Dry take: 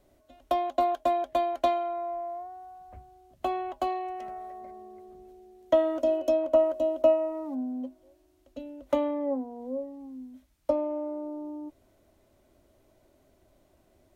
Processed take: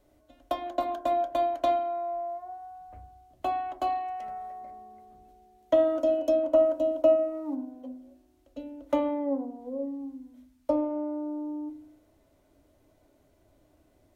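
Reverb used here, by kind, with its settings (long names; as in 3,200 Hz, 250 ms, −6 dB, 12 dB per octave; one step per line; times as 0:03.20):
feedback delay network reverb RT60 0.49 s, low-frequency decay 1.55×, high-frequency decay 0.3×, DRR 6 dB
level −2 dB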